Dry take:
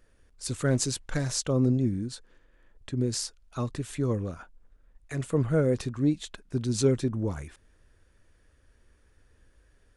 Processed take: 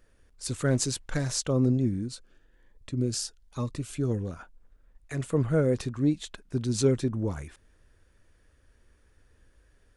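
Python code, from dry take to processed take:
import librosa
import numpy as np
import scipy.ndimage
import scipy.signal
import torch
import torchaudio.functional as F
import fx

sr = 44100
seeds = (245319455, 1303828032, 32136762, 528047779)

y = fx.notch_cascade(x, sr, direction='rising', hz=1.2, at=(2.08, 4.31))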